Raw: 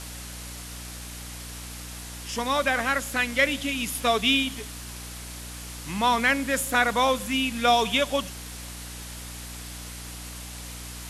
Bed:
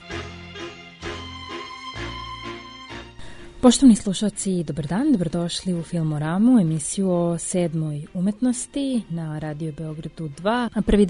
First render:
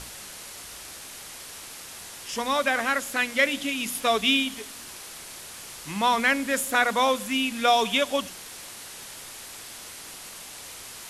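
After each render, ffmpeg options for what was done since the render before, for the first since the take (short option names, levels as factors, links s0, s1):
-af "bandreject=f=60:t=h:w=6,bandreject=f=120:t=h:w=6,bandreject=f=180:t=h:w=6,bandreject=f=240:t=h:w=6,bandreject=f=300:t=h:w=6"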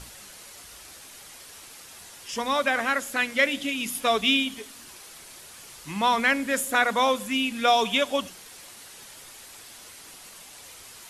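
-af "afftdn=nr=6:nf=-42"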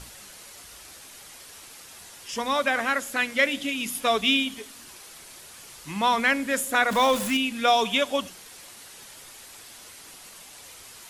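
-filter_complex "[0:a]asettb=1/sr,asplit=3[s0][s1][s2];[s0]atrim=end=6.914[s3];[s1]atrim=start=6.91:end=7.37,asetpts=PTS-STARTPTS,afade=t=in:d=0.004:c=qsin,afade=t=out:st=0.456:d=0.004:c=qsin,aeval=exprs='val(0)+0.5*0.0422*sgn(val(0))':c=same[s4];[s2]atrim=start=7.366[s5];[s3][s4]acrossfade=d=0.004:c1=hsin:c2=qsin[s6];[s6][s5]acrossfade=d=0.004:c1=qsin:c2=hsin"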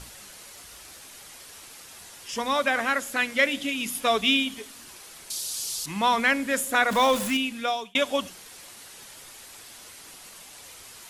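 -filter_complex "[0:a]asettb=1/sr,asplit=3[s0][s1][s2];[s0]atrim=end=0.474[s3];[s1]atrim=start=0.47:end=1.03,asetpts=PTS-STARTPTS,afade=t=in:d=0.004:c=qsin,afade=t=out:st=0.556:d=0.004:c=qsin,asoftclip=type=hard:threshold=0.0141[s4];[s2]atrim=start=1.026[s5];[s3][s4]acrossfade=d=0.004:c1=hsin:c2=qsin[s6];[s6][s5]acrossfade=d=0.004:c1=qsin:c2=hsin,asettb=1/sr,asplit=3[s7][s8][s9];[s7]atrim=end=5.304[s10];[s8]atrim=start=5.3:end=5.86,asetpts=PTS-STARTPTS,afade=t=in:d=0.004:c=qsin,afade=t=out:st=0.556:d=0.004:c=qsin,highshelf=f=3000:t=q:w=1.5:g=13.5[s11];[s9]atrim=start=5.856[s12];[s10][s11]acrossfade=d=0.004:c1=hsin:c2=qsin[s13];[s13][s12]acrossfade=d=0.004:c1=qsin:c2=hsin,asplit=2[s14][s15];[s14]atrim=end=7.95,asetpts=PTS-STARTPTS,afade=t=out:st=7.12:d=0.83:c=qsin[s16];[s15]atrim=start=7.95,asetpts=PTS-STARTPTS,afade=t=in:d=0.004:c=hsin[s17];[s16][s17]concat=n=2:v=0:a=1"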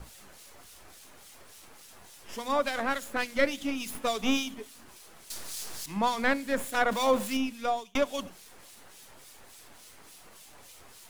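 -filter_complex "[0:a]acrossover=split=210|1300[s0][s1][s2];[s2]aeval=exprs='max(val(0),0)':c=same[s3];[s0][s1][s3]amix=inputs=3:normalize=0,acrossover=split=2300[s4][s5];[s4]aeval=exprs='val(0)*(1-0.7/2+0.7/2*cos(2*PI*3.5*n/s))':c=same[s6];[s5]aeval=exprs='val(0)*(1-0.7/2-0.7/2*cos(2*PI*3.5*n/s))':c=same[s7];[s6][s7]amix=inputs=2:normalize=0"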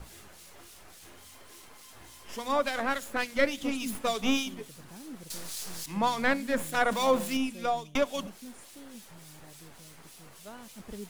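-filter_complex "[1:a]volume=0.0531[s0];[0:a][s0]amix=inputs=2:normalize=0"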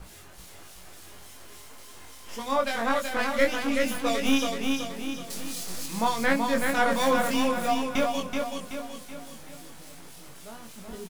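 -filter_complex "[0:a]asplit=2[s0][s1];[s1]adelay=22,volume=0.668[s2];[s0][s2]amix=inputs=2:normalize=0,aecho=1:1:378|756|1134|1512|1890|2268:0.631|0.29|0.134|0.0614|0.0283|0.013"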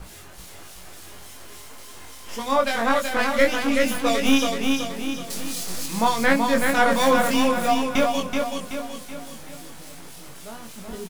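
-af "volume=1.78,alimiter=limit=0.708:level=0:latency=1"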